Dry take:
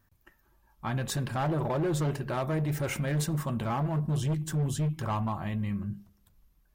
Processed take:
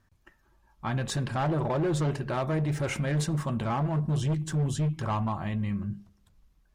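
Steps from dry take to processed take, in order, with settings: LPF 8400 Hz 12 dB/oct; gain +1.5 dB

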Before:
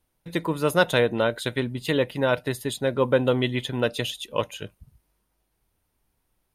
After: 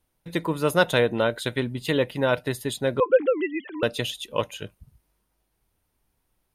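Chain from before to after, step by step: 3–3.83 sine-wave speech

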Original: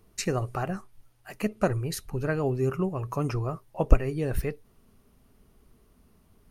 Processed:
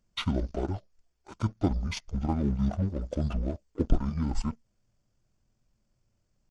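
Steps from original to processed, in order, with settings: sample leveller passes 2; pitch shift -11.5 st; gain -8 dB

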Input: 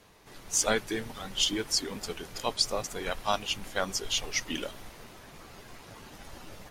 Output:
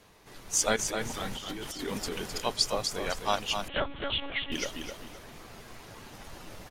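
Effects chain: 0.76–2.38 negative-ratio compressor -37 dBFS, ratio -1; feedback echo 0.259 s, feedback 28%, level -6.5 dB; 3.68–4.52 monotone LPC vocoder at 8 kHz 280 Hz

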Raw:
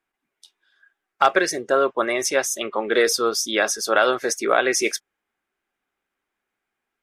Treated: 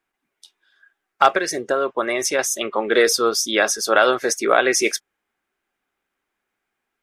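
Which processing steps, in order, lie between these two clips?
1.29–2.39 compressor, threshold -19 dBFS, peak gain reduction 7 dB; gain +2.5 dB

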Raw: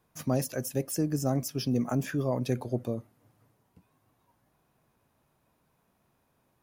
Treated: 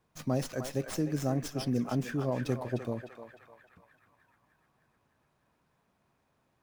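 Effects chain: narrowing echo 0.303 s, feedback 66%, band-pass 1600 Hz, level -4 dB; running maximum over 3 samples; gain -2.5 dB

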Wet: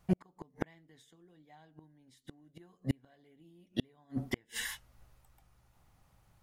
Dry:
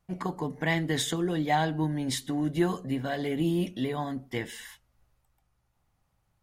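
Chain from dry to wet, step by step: flipped gate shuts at -24 dBFS, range -40 dB; gain +7 dB

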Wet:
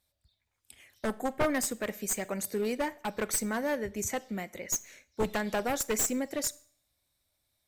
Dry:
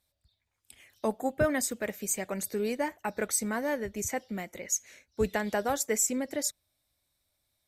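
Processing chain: one-sided fold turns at -25 dBFS; Schroeder reverb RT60 0.52 s, combs from 29 ms, DRR 19.5 dB

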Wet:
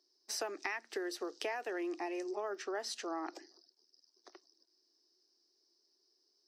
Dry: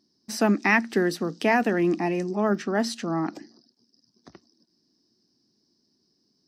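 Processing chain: elliptic high-pass 360 Hz, stop band 70 dB; bell 5700 Hz +4 dB 1.2 oct; compressor 12:1, threshold -29 dBFS, peak gain reduction 14 dB; gain -6 dB

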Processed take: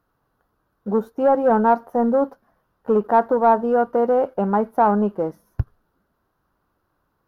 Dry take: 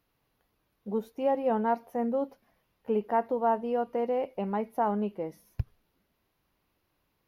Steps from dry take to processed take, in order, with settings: sample leveller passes 1; resonant high shelf 1800 Hz -7.5 dB, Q 3; gain +7 dB

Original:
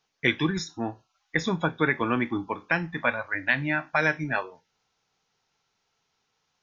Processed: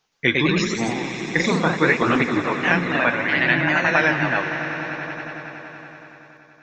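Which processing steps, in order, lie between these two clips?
swelling echo 94 ms, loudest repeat 5, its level -15.5 dB; echoes that change speed 0.118 s, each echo +1 st, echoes 3; gain +4 dB

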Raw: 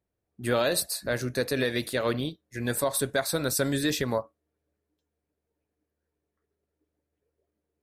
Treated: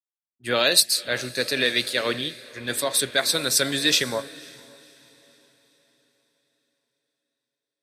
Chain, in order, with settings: weighting filter D; expander -45 dBFS; on a send: diffused feedback echo 0.524 s, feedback 61%, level -14 dB; on the sum: three-band expander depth 70%

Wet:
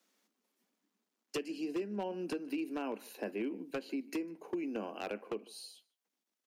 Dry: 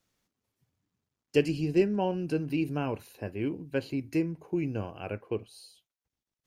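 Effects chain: steep high-pass 200 Hz 72 dB/oct; compressor 10:1, threshold -36 dBFS, peak gain reduction 18 dB; outdoor echo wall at 26 m, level -24 dB; wavefolder -31.5 dBFS; gain +2.5 dB

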